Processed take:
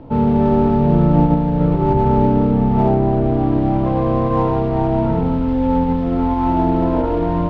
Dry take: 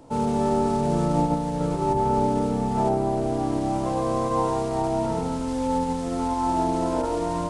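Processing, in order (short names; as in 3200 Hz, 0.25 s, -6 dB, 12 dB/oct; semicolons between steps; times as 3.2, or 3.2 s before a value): LPF 3300 Hz 24 dB/oct; low shelf 310 Hz +11.5 dB; in parallel at -7 dB: soft clip -26 dBFS, distortion -6 dB; on the sum: gain +1.5 dB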